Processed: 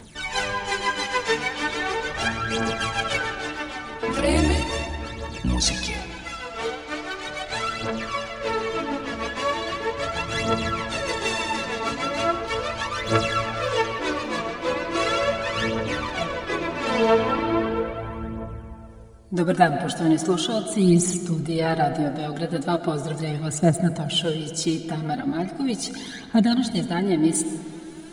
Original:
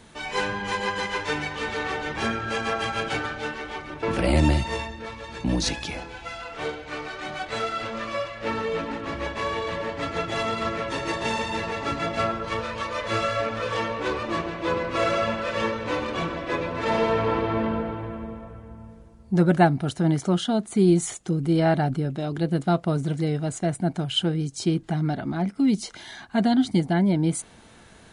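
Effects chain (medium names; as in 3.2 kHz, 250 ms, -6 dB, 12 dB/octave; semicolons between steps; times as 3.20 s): treble shelf 4.3 kHz +7.5 dB; phaser 0.38 Hz, delay 4.5 ms, feedback 66%; reverberation RT60 2.6 s, pre-delay 65 ms, DRR 9.5 dB; trim -1.5 dB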